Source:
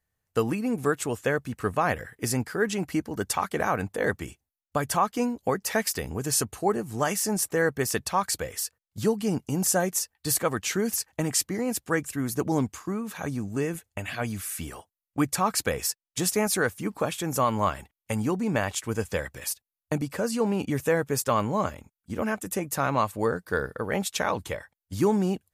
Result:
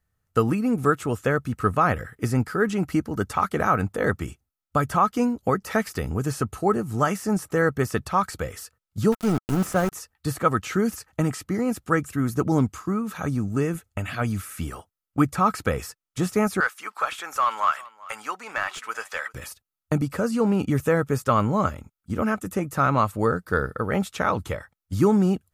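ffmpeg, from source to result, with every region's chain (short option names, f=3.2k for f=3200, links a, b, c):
-filter_complex "[0:a]asettb=1/sr,asplit=3[a][b][c];[a]atrim=end=9.124[d];[b]atrim=start=9.12:end=9.92,asetpts=PTS-STARTPTS,afade=t=in:d=0.004:c=qsin,afade=t=out:st=0.796:d=0.004:c=qsin,highshelf=f=8.2k:g=5.5,aeval=exprs='val(0)*gte(abs(val(0)),0.0398)':c=same[e];[c]atrim=start=9.916[f];[d][e]acrossfade=d=0.004:c1=hsin:c2=qsin[g];[g][f]acrossfade=d=0.004:c1=qsin:c2=hsin,asettb=1/sr,asplit=3[h][i][j];[h]atrim=end=16.604[k];[i]atrim=start=16.6:end=19.34,asetpts=PTS-STARTPTS,afade=t=in:d=0.004:c=qsin,afade=t=out:st=2.736:d=0.004:c=qsin,highpass=1.1k,asplit=2[l][m];[m]highpass=f=720:p=1,volume=12dB,asoftclip=type=tanh:threshold=-14.5dB[n];[l][n]amix=inputs=2:normalize=0,lowpass=f=3.1k:p=1,volume=-6dB,aecho=1:1:391:0.0891,atrim=end_sample=120834[o];[j]atrim=start=19.336[p];[k][o]acrossfade=d=0.004:c1=hsin:c2=qsin[q];[q][p]acrossfade=d=0.004:c1=qsin:c2=hsin,equalizer=f=1.3k:w=7:g=12.5,acrossover=split=2700[r][s];[s]acompressor=threshold=-36dB:ratio=4:attack=1:release=60[t];[r][t]amix=inputs=2:normalize=0,lowshelf=f=280:g=8.5"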